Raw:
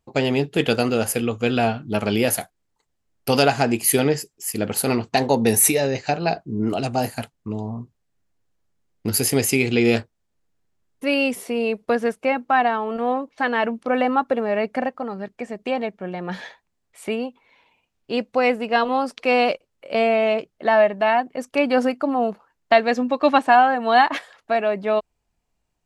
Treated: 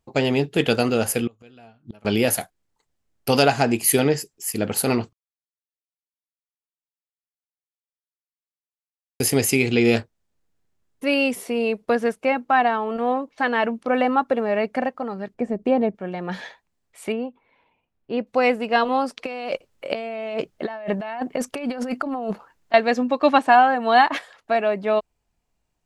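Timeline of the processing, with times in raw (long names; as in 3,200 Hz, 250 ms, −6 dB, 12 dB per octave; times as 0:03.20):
0:01.27–0:02.05: gate with flip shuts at −20 dBFS, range −28 dB
0:05.13–0:09.20: silence
0:15.34–0:15.95: tilt shelving filter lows +9 dB, about 940 Hz
0:17.12–0:18.27: head-to-tape spacing loss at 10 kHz 30 dB
0:19.26–0:22.74: compressor whose output falls as the input rises −28 dBFS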